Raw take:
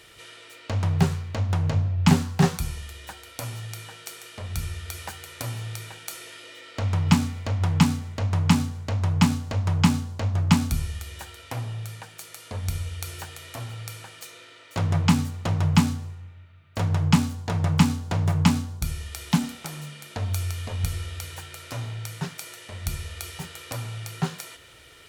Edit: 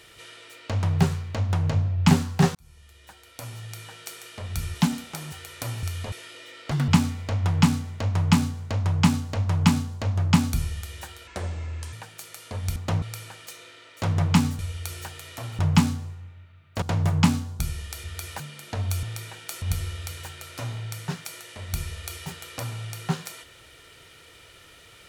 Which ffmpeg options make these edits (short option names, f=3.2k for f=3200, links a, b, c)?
-filter_complex "[0:a]asplit=19[a][b][c][d][e][f][g][h][i][j][k][l][m][n][o][p][q][r][s];[a]atrim=end=2.55,asetpts=PTS-STARTPTS,afade=t=out:st=2.546:d=0.004:c=hsin[t];[b]atrim=start=2.55:end=4.752,asetpts=PTS-STARTPTS,afade=t=in:d=1.51[u];[c]atrim=start=19.258:end=19.832[v];[d]atrim=start=5.108:end=5.622[w];[e]atrim=start=20.458:end=20.752[x];[f]atrim=start=6.208:end=6.804[y];[g]atrim=start=6.8:end=7.06,asetpts=PTS-STARTPTS,asetrate=66591,aresample=44100,atrim=end_sample=7593,asetpts=PTS-STARTPTS[z];[h]atrim=start=7.056:end=11.454[aa];[i]atrim=start=11.45:end=11.93,asetpts=PTS-STARTPTS,asetrate=32193,aresample=44100,atrim=end_sample=28997,asetpts=PTS-STARTPTS[ab];[j]atrim=start=11.926:end=12.762[ac];[k]atrim=start=15.328:end=15.592[ad];[l]atrim=start=13.758:end=15.332[ae];[m]atrim=start=12.758:end=13.762[af];[n]atrim=start=15.588:end=16.822[ag];[o]atrim=start=18.038:end=19.262[ah];[p]atrim=start=4.748:end=5.112[ai];[q]atrim=start=19.828:end=20.462[aj];[r]atrim=start=5.618:end=6.212[ak];[s]atrim=start=20.748[al];[t][u]concat=n=2:v=0:a=1[am];[am][v]acrossfade=d=0.004:c1=hsin:c2=hsin[an];[an][w]acrossfade=d=0.004:c1=hsin:c2=hsin[ao];[ao][x]acrossfade=d=0.004:c1=hsin:c2=hsin[ap];[ap][y]acrossfade=d=0.004:c1=hsin:c2=hsin[aq];[aq][z]acrossfade=d=0.004:c1=hsin:c2=hsin[ar];[ar][aa]acrossfade=d=0.004:c1=hsin:c2=hsin[as];[as][ab]acrossfade=d=0.004:c1=hsin:c2=hsin[at];[at][ac]acrossfade=d=0.004:c1=hsin:c2=hsin[au];[au][ad]acrossfade=d=0.004:c1=hsin:c2=hsin[av];[av][ae]acrossfade=d=0.004:c1=hsin:c2=hsin[aw];[aw][af]acrossfade=d=0.004:c1=hsin:c2=hsin[ax];[ax][ag]acrossfade=d=0.004:c1=hsin:c2=hsin[ay];[ay][ah]acrossfade=d=0.004:c1=hsin:c2=hsin[az];[az][ai]acrossfade=d=0.004:c1=hsin:c2=hsin[ba];[ba][aj]acrossfade=d=0.004:c1=hsin:c2=hsin[bb];[bb][ak]acrossfade=d=0.004:c1=hsin:c2=hsin[bc];[bc][al]acrossfade=d=0.004:c1=hsin:c2=hsin"